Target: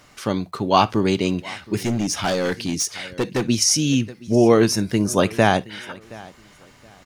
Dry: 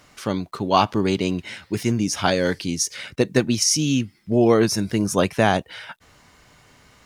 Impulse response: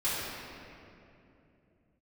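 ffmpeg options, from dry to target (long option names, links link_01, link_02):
-filter_complex "[0:a]aecho=1:1:721|1442:0.0841|0.021,asplit=2[link_01][link_02];[1:a]atrim=start_sample=2205,atrim=end_sample=3087[link_03];[link_02][link_03]afir=irnorm=-1:irlink=0,volume=-21dB[link_04];[link_01][link_04]amix=inputs=2:normalize=0,asettb=1/sr,asplit=3[link_05][link_06][link_07];[link_05]atrim=end=1.794[link_08];[link_06]atrim=start=1.79:end=3.49,asetpts=PTS-STARTPTS,afade=type=in:duration=0.004:curve=qsin,afade=type=out:start_time=1.696:duration=0.004:curve=qsin,volume=18.5dB,asoftclip=hard,volume=-18.5dB[link_09];[link_07]atrim=start=3.486[link_10];[link_08][link_09]acrossfade=duration=0.004:curve1=hsin:curve2=qsin[link_11];[link_11][link_10]acrossfade=duration=0.004:curve1=qsin:curve2=hsin,volume=1dB"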